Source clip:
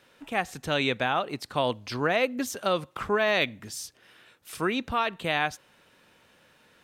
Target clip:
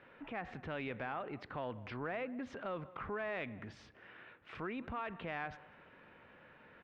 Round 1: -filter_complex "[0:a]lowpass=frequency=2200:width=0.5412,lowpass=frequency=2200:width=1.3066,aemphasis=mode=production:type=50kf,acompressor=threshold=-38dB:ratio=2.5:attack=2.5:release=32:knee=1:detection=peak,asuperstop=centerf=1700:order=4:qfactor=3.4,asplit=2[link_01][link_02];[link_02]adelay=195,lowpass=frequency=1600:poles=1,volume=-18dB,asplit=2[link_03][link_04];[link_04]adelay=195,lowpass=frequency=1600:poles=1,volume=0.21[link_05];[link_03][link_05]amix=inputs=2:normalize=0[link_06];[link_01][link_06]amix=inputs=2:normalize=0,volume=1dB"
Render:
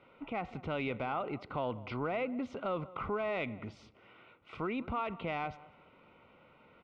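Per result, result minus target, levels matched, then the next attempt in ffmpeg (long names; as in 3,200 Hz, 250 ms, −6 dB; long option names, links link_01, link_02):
downward compressor: peak gain reduction −6 dB; 2,000 Hz band −4.0 dB
-filter_complex "[0:a]lowpass=frequency=2200:width=0.5412,lowpass=frequency=2200:width=1.3066,aemphasis=mode=production:type=50kf,acompressor=threshold=-48dB:ratio=2.5:attack=2.5:release=32:knee=1:detection=peak,asuperstop=centerf=1700:order=4:qfactor=3.4,asplit=2[link_01][link_02];[link_02]adelay=195,lowpass=frequency=1600:poles=1,volume=-18dB,asplit=2[link_03][link_04];[link_04]adelay=195,lowpass=frequency=1600:poles=1,volume=0.21[link_05];[link_03][link_05]amix=inputs=2:normalize=0[link_06];[link_01][link_06]amix=inputs=2:normalize=0,volume=1dB"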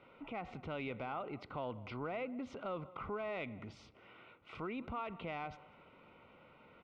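2,000 Hz band −3.5 dB
-filter_complex "[0:a]lowpass=frequency=2200:width=0.5412,lowpass=frequency=2200:width=1.3066,aemphasis=mode=production:type=50kf,acompressor=threshold=-48dB:ratio=2.5:attack=2.5:release=32:knee=1:detection=peak,asplit=2[link_01][link_02];[link_02]adelay=195,lowpass=frequency=1600:poles=1,volume=-18dB,asplit=2[link_03][link_04];[link_04]adelay=195,lowpass=frequency=1600:poles=1,volume=0.21[link_05];[link_03][link_05]amix=inputs=2:normalize=0[link_06];[link_01][link_06]amix=inputs=2:normalize=0,volume=1dB"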